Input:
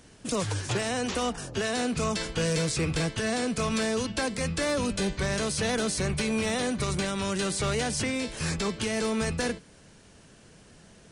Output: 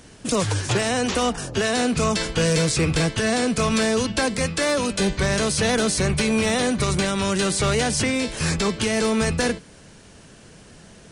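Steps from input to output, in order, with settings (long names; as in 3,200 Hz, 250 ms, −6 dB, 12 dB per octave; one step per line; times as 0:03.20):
0:04.46–0:05.00: low-shelf EQ 170 Hz −10.5 dB
level +7 dB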